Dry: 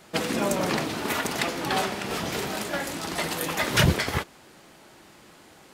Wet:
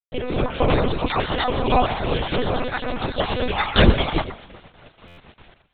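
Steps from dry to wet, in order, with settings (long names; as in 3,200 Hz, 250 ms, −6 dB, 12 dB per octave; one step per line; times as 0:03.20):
time-frequency cells dropped at random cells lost 31%
high-pass filter 170 Hz 6 dB per octave
parametric band 1,900 Hz −9 dB 1.2 octaves
automatic gain control gain up to 8 dB
bit reduction 7 bits
delay that swaps between a low-pass and a high-pass 123 ms, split 2,400 Hz, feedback 51%, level −12 dB
one-pitch LPC vocoder at 8 kHz 250 Hz
buffer that repeats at 0:05.07, samples 512, times 8
level +4 dB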